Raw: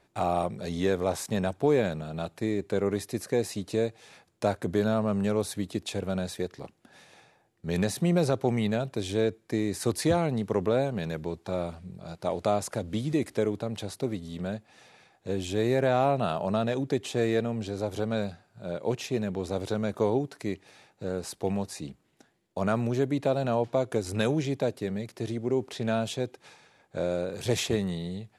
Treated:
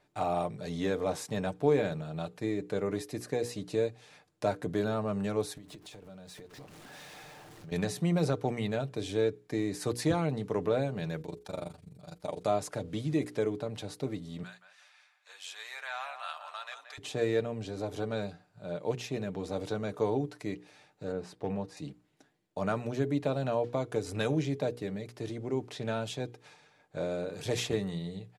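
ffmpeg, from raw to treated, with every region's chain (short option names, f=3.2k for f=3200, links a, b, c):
-filter_complex "[0:a]asettb=1/sr,asplit=3[a][b][c];[a]atrim=end=5.574[d];[b]atrim=start=5.57:end=7.72,asetpts=PTS-STARTPTS,afade=t=in:d=0.004:c=qsin,afade=t=out:st=2.146:d=0.004:c=qsin,aeval=exprs='val(0)+0.5*0.00794*sgn(val(0))':c=same,acompressor=threshold=-40dB:ratio=20:attack=3.2:release=140:knee=1:detection=peak[e];[c]atrim=start=7.716[f];[d][e]acrossfade=d=0.004:c1=hsin:c2=qsin[g];[g][f]acrossfade=d=0.004:c1=qsin:c2=hsin,asettb=1/sr,asplit=3[h][i][j];[h]atrim=end=11.214[k];[i]atrim=start=11.21:end=12.47,asetpts=PTS-STARTPTS,afade=t=in:d=0.004:c=qsin,afade=t=out:st=1.256:d=0.004:c=qsin,aemphasis=mode=production:type=50kf,tremolo=f=24:d=0.974[l];[j]atrim=start=12.466[m];[k][l]acrossfade=d=0.004:c1=hsin:c2=qsin[n];[n][m]acrossfade=d=0.004:c1=qsin:c2=hsin,asettb=1/sr,asplit=3[o][p][q];[o]atrim=end=14.434[r];[p]atrim=start=14.43:end=16.98,asetpts=PTS-STARTPTS,afade=t=in:d=0.004:c=qsin,afade=t=out:st=2.546:d=0.004:c=qsin,highpass=f=1.1k:w=0.5412,highpass=f=1.1k:w=1.3066,asplit=2[s][t];[t]adelay=176,lowpass=f=1.7k:p=1,volume=-7dB,asplit=2[u][v];[v]adelay=176,lowpass=f=1.7k:p=1,volume=0.38,asplit=2[w][x];[x]adelay=176,lowpass=f=1.7k:p=1,volume=0.38,asplit=2[y][z];[z]adelay=176,lowpass=f=1.7k:p=1,volume=0.38[aa];[s][u][w][y][aa]amix=inputs=5:normalize=0,atrim=end_sample=112455[ab];[q]atrim=start=16.976[ac];[r][ab]acrossfade=d=0.004:c1=hsin:c2=qsin[ad];[ad][ac]acrossfade=d=0.004:c1=qsin:c2=hsin,asettb=1/sr,asplit=3[ae][af][ag];[ae]atrim=end=21.124[ah];[af]atrim=start=21.12:end=21.77,asetpts=PTS-STARTPTS,afade=t=in:d=0.004:c=qsin,afade=t=out:st=0.646:d=0.004:c=qsin,aemphasis=mode=reproduction:type=75kf,asoftclip=type=hard:threshold=-17dB[ai];[ag]atrim=start=21.766[aj];[ah][ai]acrossfade=d=0.004:c1=hsin:c2=qsin[ak];[ak][aj]acrossfade=d=0.004:c1=qsin:c2=hsin,highshelf=f=10k:g=-6,bandreject=f=60:t=h:w=6,bandreject=f=120:t=h:w=6,bandreject=f=180:t=h:w=6,bandreject=f=240:t=h:w=6,bandreject=f=300:t=h:w=6,bandreject=f=360:t=h:w=6,bandreject=f=420:t=h:w=6,bandreject=f=480:t=h:w=6,aecho=1:1:6.7:0.41,volume=-4dB"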